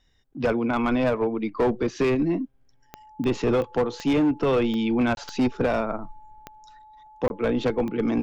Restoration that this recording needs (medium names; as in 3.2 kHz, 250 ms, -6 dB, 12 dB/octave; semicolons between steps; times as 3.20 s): de-click; band-stop 860 Hz, Q 30; interpolate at 5.15/7.28 s, 21 ms